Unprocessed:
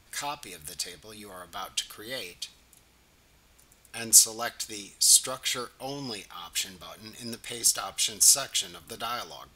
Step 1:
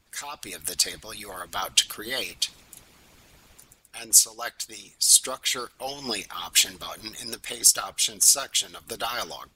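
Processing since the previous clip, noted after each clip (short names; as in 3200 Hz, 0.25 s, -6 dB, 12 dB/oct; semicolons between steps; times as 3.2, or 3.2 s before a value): AGC gain up to 12 dB; harmonic-percussive split harmonic -18 dB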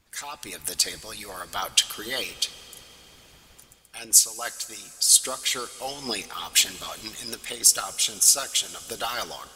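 reverb RT60 4.8 s, pre-delay 3 ms, DRR 15 dB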